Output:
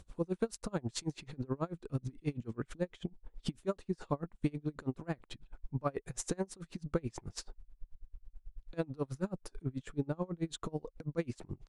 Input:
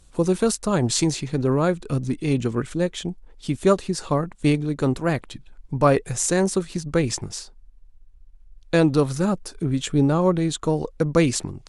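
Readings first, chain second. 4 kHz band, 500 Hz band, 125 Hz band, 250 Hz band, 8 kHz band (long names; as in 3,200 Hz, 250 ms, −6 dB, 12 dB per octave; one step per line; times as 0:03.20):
−17.5 dB, −17.5 dB, −15.5 dB, −16.5 dB, −19.0 dB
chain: high-shelf EQ 3,400 Hz −10 dB
downward compressor 4 to 1, threshold −36 dBFS, peak gain reduction 19.5 dB
tremolo with a sine in dB 9.2 Hz, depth 31 dB
level +5.5 dB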